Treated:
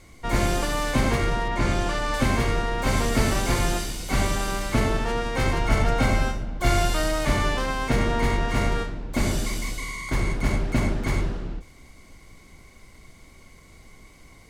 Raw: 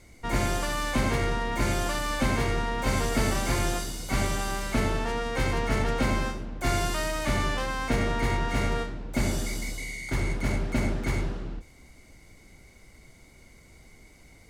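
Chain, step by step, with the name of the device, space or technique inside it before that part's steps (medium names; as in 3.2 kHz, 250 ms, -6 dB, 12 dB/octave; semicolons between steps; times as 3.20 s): 1.48–2.14 s: distance through air 61 m; 5.59–7.25 s: comb 1.4 ms, depth 38%; octave pedal (harmony voices -12 st -6 dB); trim +2.5 dB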